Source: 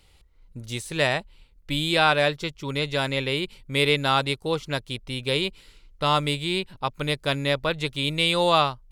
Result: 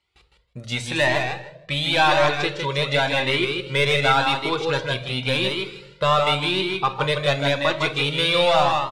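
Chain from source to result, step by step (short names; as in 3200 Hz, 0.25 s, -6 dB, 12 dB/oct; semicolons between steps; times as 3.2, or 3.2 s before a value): HPF 54 Hz 24 dB/oct; gate with hold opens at -49 dBFS; LPF 8400 Hz 12 dB/oct; tone controls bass -3 dB, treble -1 dB; in parallel at -2.5 dB: compressor, threshold -29 dBFS, peak gain reduction 13.5 dB; on the sum: soft clip -14 dBFS, distortion -14 dB; overdrive pedal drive 5 dB, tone 3200 Hz, clips at -14 dBFS; feedback echo 0.158 s, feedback 16%, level -4.5 dB; on a send at -8.5 dB: reverb RT60 0.75 s, pre-delay 5 ms; on the sum: cascading flanger rising 0.9 Hz; gain +8.5 dB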